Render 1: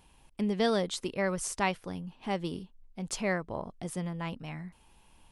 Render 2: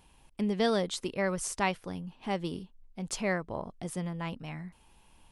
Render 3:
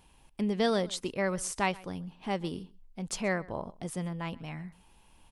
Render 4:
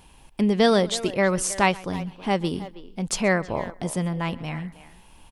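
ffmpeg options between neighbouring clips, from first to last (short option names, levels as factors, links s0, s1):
-af anull
-filter_complex "[0:a]asplit=2[s0][s1];[s1]adelay=128.3,volume=0.0794,highshelf=f=4000:g=-2.89[s2];[s0][s2]amix=inputs=2:normalize=0"
-filter_complex "[0:a]asplit=2[s0][s1];[s1]adelay=320,highpass=300,lowpass=3400,asoftclip=type=hard:threshold=0.0596,volume=0.2[s2];[s0][s2]amix=inputs=2:normalize=0,volume=2.82"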